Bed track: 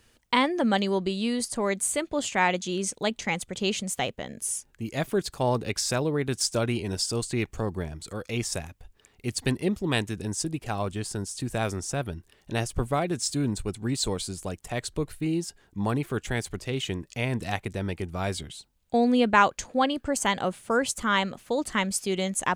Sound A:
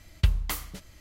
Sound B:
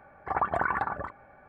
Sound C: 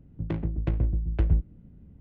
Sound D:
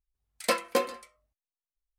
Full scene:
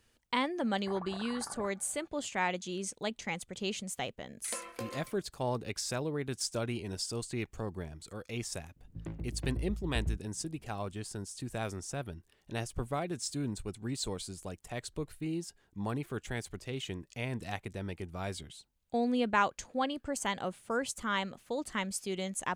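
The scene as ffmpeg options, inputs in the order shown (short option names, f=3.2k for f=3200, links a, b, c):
-filter_complex "[0:a]volume=-8.5dB[a];[2:a]acompressor=threshold=-31dB:ratio=6:attack=3.2:release=140:knee=1:detection=peak[b];[4:a]acompressor=threshold=-37dB:ratio=6:attack=3.2:release=140:knee=1:detection=peak[c];[b]atrim=end=1.48,asetpts=PTS-STARTPTS,volume=-9.5dB,afade=t=in:d=0.004:c=hsin,afade=t=out:st=1.476:d=0.004:c=hsin,adelay=600[d];[c]atrim=end=1.98,asetpts=PTS-STARTPTS,volume=-1dB,afade=t=in:d=0.004:c=hsin,afade=t=out:st=1.976:d=0.004:c=hsin,adelay=4040[e];[3:a]atrim=end=2,asetpts=PTS-STARTPTS,volume=-11.5dB,afade=t=in:d=0.004:c=hsin,afade=t=out:st=1.996:d=0.004:c=hsin,adelay=8760[f];[a][d][e][f]amix=inputs=4:normalize=0"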